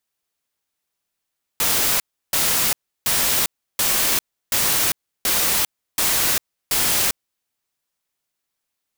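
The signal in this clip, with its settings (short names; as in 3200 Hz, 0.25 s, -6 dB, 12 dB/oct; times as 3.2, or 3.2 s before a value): noise bursts white, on 0.40 s, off 0.33 s, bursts 8, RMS -19 dBFS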